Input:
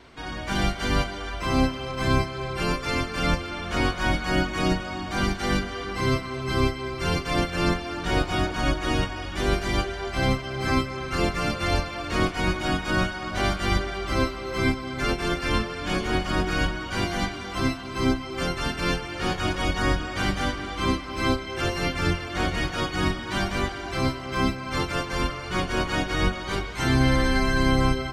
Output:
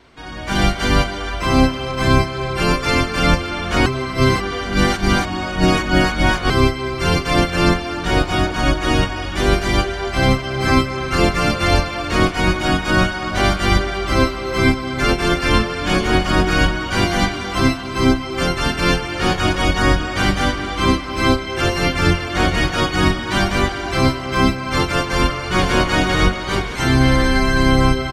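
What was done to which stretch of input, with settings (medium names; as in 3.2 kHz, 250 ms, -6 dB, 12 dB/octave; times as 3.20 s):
3.86–6.50 s: reverse
25.09–25.75 s: echo throw 500 ms, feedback 55%, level -5.5 dB
whole clip: level rider gain up to 11 dB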